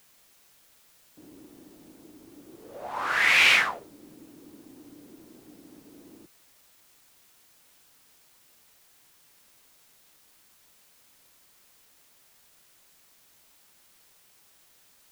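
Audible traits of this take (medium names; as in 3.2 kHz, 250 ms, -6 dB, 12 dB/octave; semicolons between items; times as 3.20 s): a quantiser's noise floor 10-bit, dither triangular; Vorbis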